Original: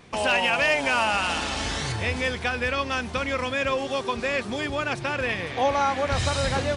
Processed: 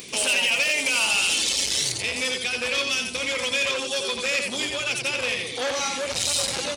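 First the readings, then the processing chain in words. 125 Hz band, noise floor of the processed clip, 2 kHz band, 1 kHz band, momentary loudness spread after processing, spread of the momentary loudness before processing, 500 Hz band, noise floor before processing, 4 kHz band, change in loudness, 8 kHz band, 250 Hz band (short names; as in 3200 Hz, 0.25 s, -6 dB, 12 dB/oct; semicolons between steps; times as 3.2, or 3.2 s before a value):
-12.5 dB, -33 dBFS, +1.0 dB, -8.5 dB, 6 LU, 6 LU, -3.5 dB, -36 dBFS, +7.0 dB, +2.0 dB, +12.5 dB, -5.5 dB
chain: RIAA curve recording; reverb removal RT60 1.2 s; band shelf 1100 Hz -12 dB; limiter -17.5 dBFS, peak gain reduction 8 dB; upward compressor, threshold -40 dBFS; doubler 16 ms -13 dB; feedback echo 86 ms, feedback 27%, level -5 dB; core saturation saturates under 3700 Hz; gain +5.5 dB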